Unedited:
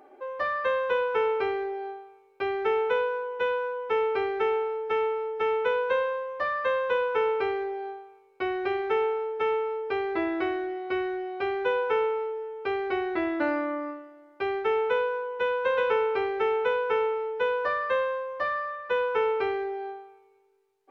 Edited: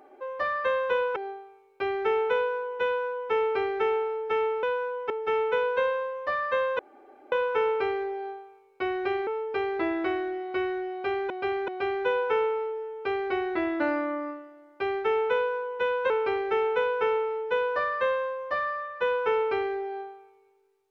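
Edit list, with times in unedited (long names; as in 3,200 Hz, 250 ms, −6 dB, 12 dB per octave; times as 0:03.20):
0:01.16–0:01.76: remove
0:03.45–0:03.92: duplicate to 0:05.23
0:06.92: splice in room tone 0.53 s
0:08.87–0:09.63: remove
0:11.28–0:11.66: repeat, 3 plays
0:15.70–0:15.99: remove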